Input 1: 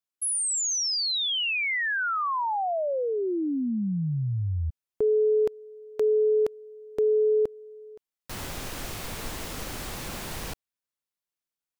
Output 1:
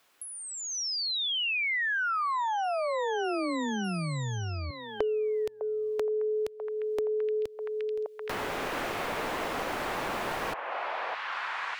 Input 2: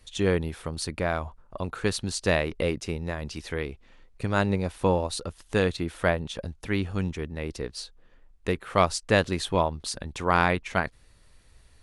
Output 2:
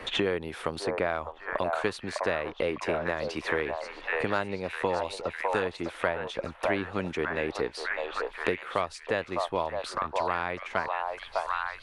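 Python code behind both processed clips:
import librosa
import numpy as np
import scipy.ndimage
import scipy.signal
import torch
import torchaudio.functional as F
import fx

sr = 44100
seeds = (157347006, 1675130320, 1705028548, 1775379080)

y = fx.bass_treble(x, sr, bass_db=-13, treble_db=-11)
y = fx.rider(y, sr, range_db=4, speed_s=0.5)
y = fx.echo_stepped(y, sr, ms=604, hz=790.0, octaves=0.7, feedback_pct=70, wet_db=-2)
y = fx.band_squash(y, sr, depth_pct=100)
y = y * 10.0 ** (-2.0 / 20.0)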